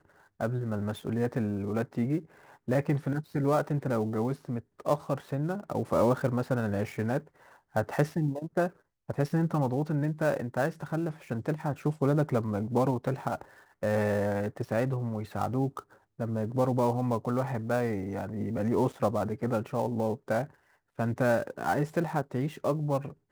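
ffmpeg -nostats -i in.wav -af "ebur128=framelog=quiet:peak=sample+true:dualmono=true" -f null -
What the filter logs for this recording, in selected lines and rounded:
Integrated loudness:
  I:         -27.4 LUFS
  Threshold: -37.6 LUFS
Loudness range:
  LRA:         1.5 LU
  Threshold: -47.6 LUFS
  LRA low:   -28.3 LUFS
  LRA high:  -26.8 LUFS
Sample peak:
  Peak:      -11.0 dBFS
True peak:
  Peak:      -11.0 dBFS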